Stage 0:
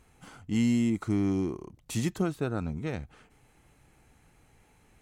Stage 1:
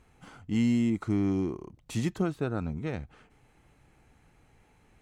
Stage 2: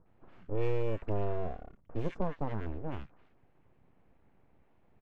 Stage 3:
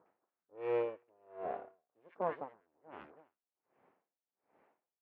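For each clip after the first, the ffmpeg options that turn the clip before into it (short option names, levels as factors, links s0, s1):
-af "highshelf=f=6600:g=-9.5"
-filter_complex "[0:a]aeval=exprs='abs(val(0))':c=same,acrossover=split=1400|5000[s0][s1][s2];[s1]adelay=60[s3];[s2]adelay=90[s4];[s0][s3][s4]amix=inputs=3:normalize=0,adynamicsmooth=sensitivity=2:basefreq=1900,volume=0.841"
-af "highpass=470,lowpass=2000,aecho=1:1:330:0.178,aeval=exprs='val(0)*pow(10,-38*(0.5-0.5*cos(2*PI*1.3*n/s))/20)':c=same,volume=2"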